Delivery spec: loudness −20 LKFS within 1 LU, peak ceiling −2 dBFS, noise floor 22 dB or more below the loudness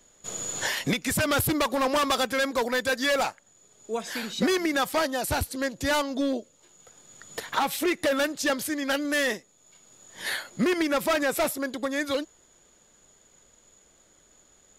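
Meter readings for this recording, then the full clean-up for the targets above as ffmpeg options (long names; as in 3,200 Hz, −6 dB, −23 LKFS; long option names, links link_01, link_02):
integrated loudness −26.5 LKFS; sample peak −15.5 dBFS; target loudness −20.0 LKFS
→ -af "volume=6.5dB"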